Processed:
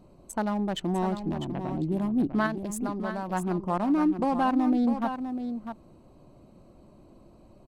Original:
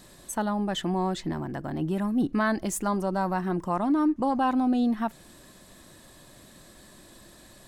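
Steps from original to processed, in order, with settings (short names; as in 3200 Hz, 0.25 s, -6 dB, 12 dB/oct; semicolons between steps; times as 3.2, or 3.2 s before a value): Wiener smoothing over 25 samples; 1.34–1.92 LPF 3200 Hz 12 dB/oct; 2.46–3.33 compressor 5:1, threshold -30 dBFS, peak gain reduction 7.5 dB; echo 0.65 s -8.5 dB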